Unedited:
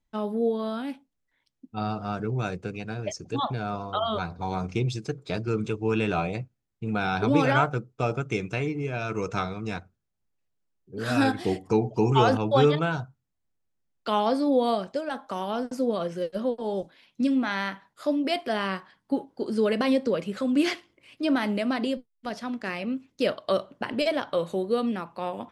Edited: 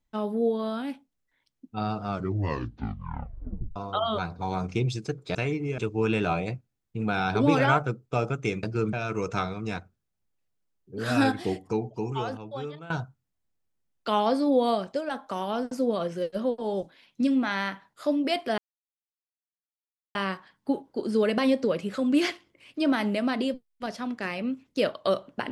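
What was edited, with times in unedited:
2.06 tape stop 1.70 s
5.35–5.65 swap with 8.5–8.93
11.25–12.9 fade out quadratic, to -17.5 dB
18.58 insert silence 1.57 s

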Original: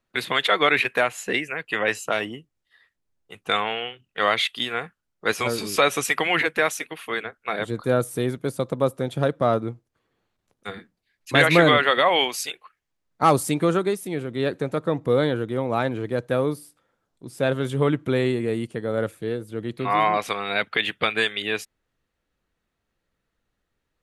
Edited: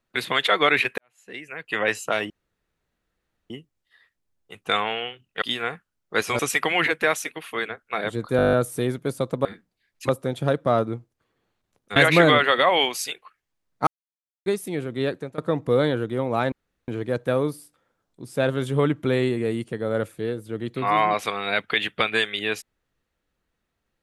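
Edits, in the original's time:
0.98–1.78 fade in quadratic
2.3 insert room tone 1.20 s
4.22–4.53 cut
5.5–5.94 cut
7.92 stutter 0.02 s, 9 plays
10.71–11.35 move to 8.84
13.26–13.85 mute
14.41–14.77 fade out, to -17.5 dB
15.91 insert room tone 0.36 s

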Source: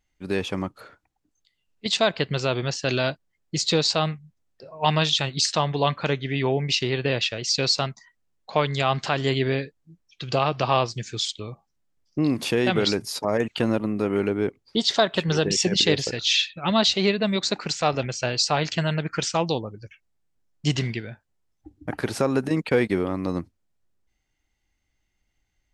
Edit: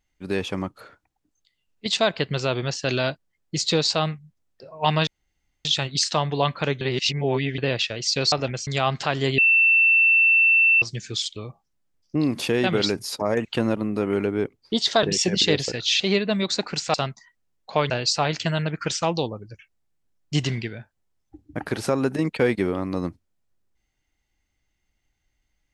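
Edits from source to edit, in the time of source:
5.07 insert room tone 0.58 s
6.23–7 reverse
7.74–8.7 swap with 17.87–18.22
9.41–10.85 bleep 2680 Hz -13.5 dBFS
15.06–15.42 cut
16.39–16.93 cut

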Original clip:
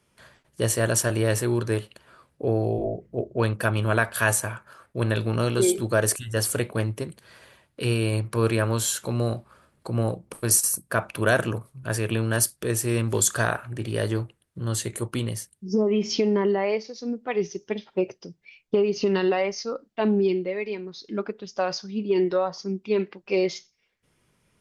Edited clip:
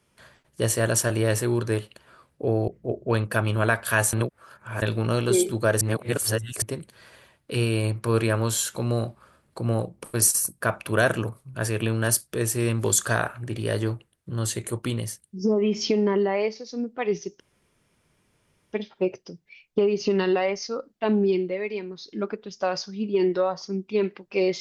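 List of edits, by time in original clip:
2.68–2.97 cut
4.42–5.11 reverse
6.1–6.91 reverse
17.69 insert room tone 1.33 s

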